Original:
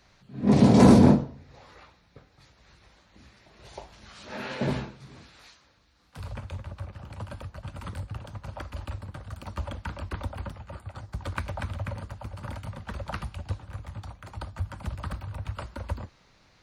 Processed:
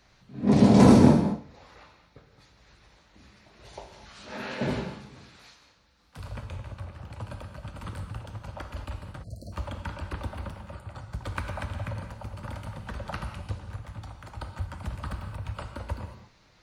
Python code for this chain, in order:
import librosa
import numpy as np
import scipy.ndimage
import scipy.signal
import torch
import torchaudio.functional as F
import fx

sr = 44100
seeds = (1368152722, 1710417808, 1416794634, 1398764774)

y = fx.rev_gated(x, sr, seeds[0], gate_ms=250, shape='flat', drr_db=5.5)
y = fx.spec_erase(y, sr, start_s=9.23, length_s=0.3, low_hz=720.0, high_hz=4000.0)
y = y * 10.0 ** (-1.0 / 20.0)